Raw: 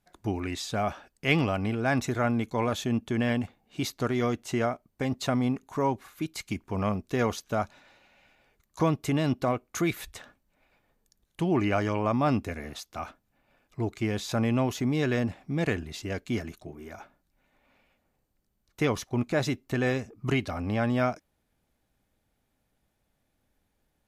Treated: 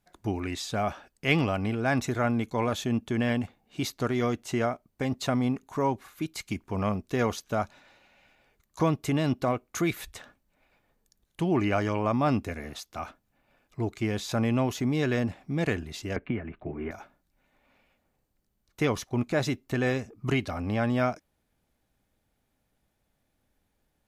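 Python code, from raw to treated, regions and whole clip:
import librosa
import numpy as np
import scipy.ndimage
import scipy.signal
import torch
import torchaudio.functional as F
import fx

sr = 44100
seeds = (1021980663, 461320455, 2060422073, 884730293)

y = fx.chain(x, sr, fx.steep_lowpass(hz=2600.0, slope=36),
    fx.band_squash(depth_pct=100), at=(16.16, 16.91))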